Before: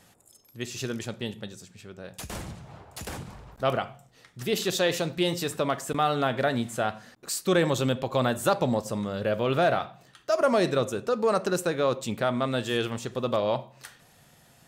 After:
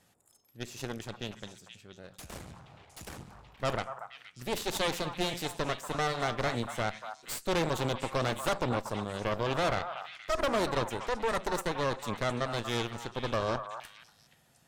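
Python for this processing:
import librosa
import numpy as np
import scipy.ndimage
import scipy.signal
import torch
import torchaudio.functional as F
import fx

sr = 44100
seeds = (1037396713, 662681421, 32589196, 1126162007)

y = fx.cheby_harmonics(x, sr, harmonics=(6,), levels_db=(-9,), full_scale_db=-11.0)
y = fx.echo_stepped(y, sr, ms=237, hz=1000.0, octaves=1.4, feedback_pct=70, wet_db=-5)
y = F.gain(torch.from_numpy(y), -9.0).numpy()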